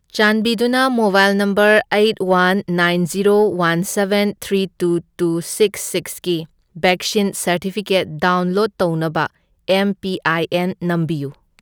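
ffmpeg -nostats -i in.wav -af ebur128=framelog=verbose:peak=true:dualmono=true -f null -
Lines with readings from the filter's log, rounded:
Integrated loudness:
  I:         -14.3 LUFS
  Threshold: -24.4 LUFS
Loudness range:
  LRA:         4.6 LU
  Threshold: -34.6 LUFS
  LRA low:   -16.5 LUFS
  LRA high:  -11.9 LUFS
True peak:
  Peak:       -1.7 dBFS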